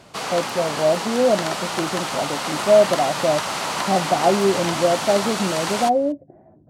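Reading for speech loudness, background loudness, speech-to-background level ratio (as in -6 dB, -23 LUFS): -21.0 LUFS, -25.0 LUFS, 4.0 dB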